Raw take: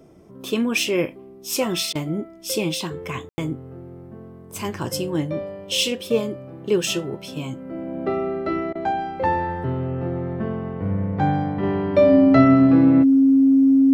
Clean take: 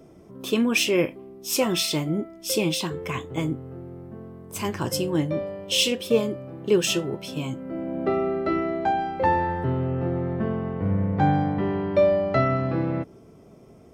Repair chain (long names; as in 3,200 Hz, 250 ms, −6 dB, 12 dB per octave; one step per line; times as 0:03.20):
notch filter 270 Hz, Q 30
ambience match 0:03.29–0:03.38
repair the gap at 0:01.93/0:08.73, 21 ms
level correction −3.5 dB, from 0:11.63